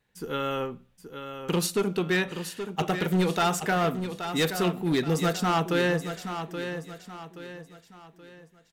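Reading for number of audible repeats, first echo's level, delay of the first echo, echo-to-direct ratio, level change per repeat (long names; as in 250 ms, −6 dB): 4, −9.0 dB, 826 ms, −8.5 dB, −8.0 dB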